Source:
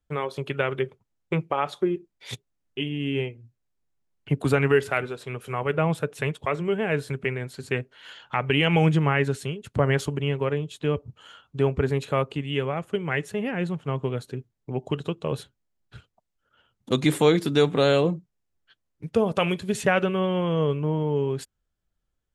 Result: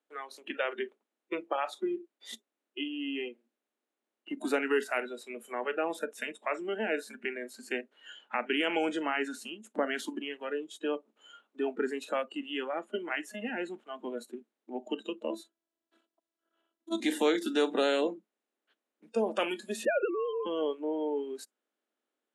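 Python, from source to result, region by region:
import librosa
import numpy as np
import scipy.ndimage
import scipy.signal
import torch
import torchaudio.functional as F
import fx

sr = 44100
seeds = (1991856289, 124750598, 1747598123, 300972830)

y = fx.chain(x, sr, fx.peak_eq(hz=2300.0, db=-7.0, octaves=0.7),
    fx.robotise(hz=331.0), at=(15.3, 17.0))
y = fx.chain(y, sr, fx.sine_speech(),
    fx.cheby1_lowpass(hz=1700.0, order=2), at=(19.85, 20.46))
y = fx.bin_compress(y, sr, power=0.6)
y = fx.noise_reduce_blind(y, sr, reduce_db=21)
y = scipy.signal.sosfilt(scipy.signal.cheby1(6, 1.0, 220.0, 'highpass', fs=sr, output='sos'), y)
y = y * librosa.db_to_amplitude(-8.5)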